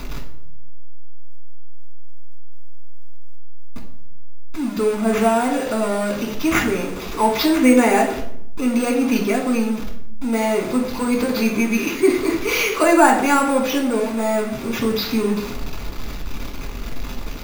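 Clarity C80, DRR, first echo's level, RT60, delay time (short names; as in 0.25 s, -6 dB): 11.0 dB, -0.5 dB, none, 0.70 s, none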